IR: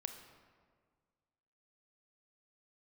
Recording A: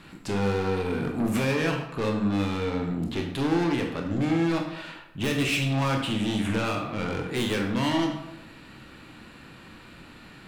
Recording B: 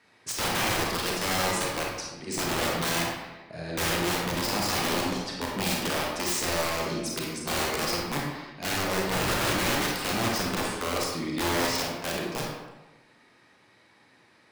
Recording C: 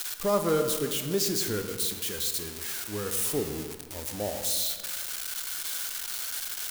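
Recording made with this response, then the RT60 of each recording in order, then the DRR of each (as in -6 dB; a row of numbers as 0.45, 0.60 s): C; 0.85, 1.1, 1.7 s; 1.0, -2.5, 6.5 dB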